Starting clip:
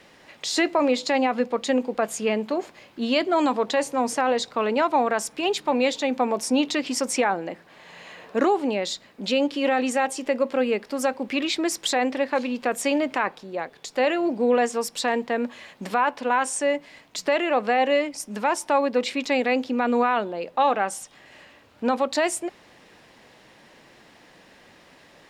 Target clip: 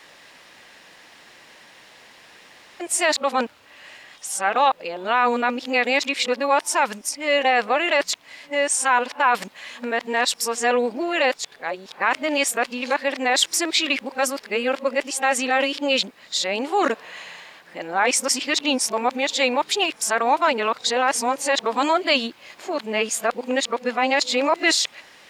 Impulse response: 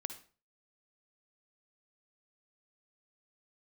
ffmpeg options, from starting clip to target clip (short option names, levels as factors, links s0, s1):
-af "areverse,tiltshelf=f=650:g=-6.5,volume=1.12"